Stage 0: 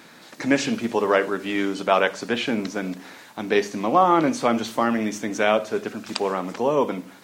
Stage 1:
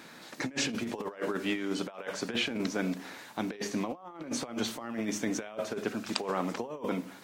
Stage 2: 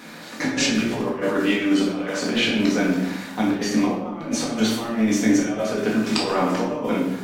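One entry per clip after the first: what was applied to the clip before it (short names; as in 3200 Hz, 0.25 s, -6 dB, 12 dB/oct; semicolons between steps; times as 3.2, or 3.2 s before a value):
negative-ratio compressor -26 dBFS, ratio -0.5; gain -7 dB
shoebox room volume 310 m³, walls mixed, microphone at 1.9 m; gain +5 dB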